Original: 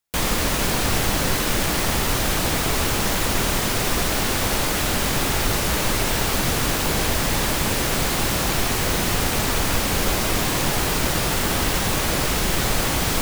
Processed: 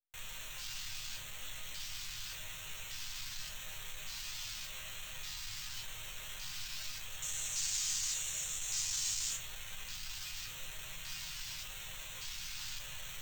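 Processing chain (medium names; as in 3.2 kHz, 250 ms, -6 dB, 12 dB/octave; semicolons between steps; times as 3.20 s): bit crusher 5-bit; Chebyshev band-stop 600–2600 Hz, order 4; two-band feedback delay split 1.2 kHz, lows 290 ms, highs 156 ms, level -5.5 dB; sample-and-hold 4×; saturation -26.5 dBFS, distortion -7 dB; 7.22–9.37 s: peaking EQ 7 kHz +15 dB 0.86 oct; LFO notch square 0.86 Hz 500–4900 Hz; amplifier tone stack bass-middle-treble 10-0-10; chord resonator G#2 major, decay 0.25 s; trim +2 dB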